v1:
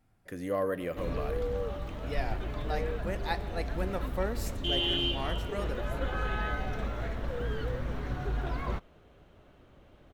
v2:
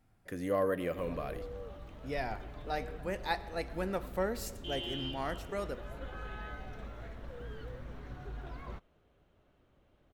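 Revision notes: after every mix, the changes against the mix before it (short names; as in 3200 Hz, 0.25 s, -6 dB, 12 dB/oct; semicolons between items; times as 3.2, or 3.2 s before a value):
background -11.0 dB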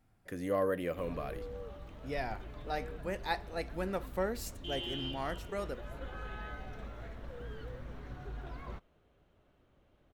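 reverb: off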